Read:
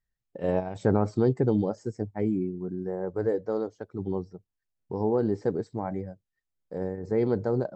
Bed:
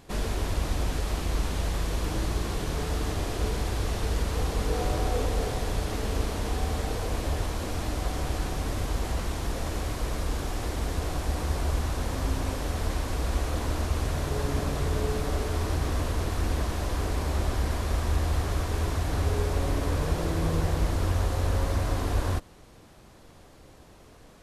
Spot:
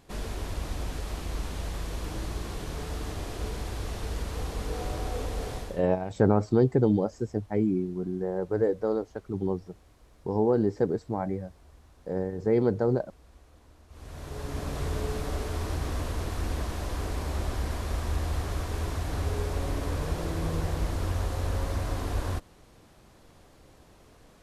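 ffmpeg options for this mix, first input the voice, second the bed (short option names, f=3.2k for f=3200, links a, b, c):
-filter_complex "[0:a]adelay=5350,volume=1.5dB[a];[1:a]volume=18.5dB,afade=t=out:st=5.56:d=0.27:silence=0.0794328,afade=t=in:st=13.88:d=0.95:silence=0.0630957[b];[a][b]amix=inputs=2:normalize=0"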